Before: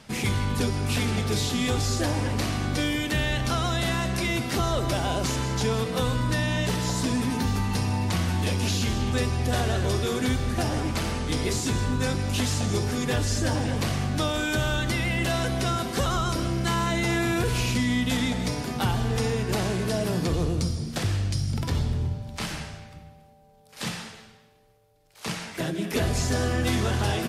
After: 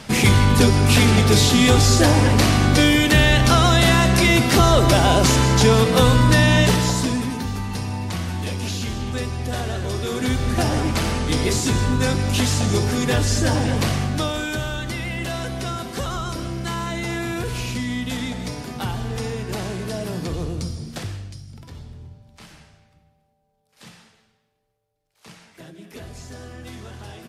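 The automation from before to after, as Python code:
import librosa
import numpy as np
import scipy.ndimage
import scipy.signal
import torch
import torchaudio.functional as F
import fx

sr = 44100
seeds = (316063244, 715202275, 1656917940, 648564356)

y = fx.gain(x, sr, db=fx.line((6.61, 11.0), (7.43, -1.0), (9.89, -1.0), (10.55, 6.0), (13.85, 6.0), (14.71, -1.5), (20.95, -1.5), (21.45, -13.0)))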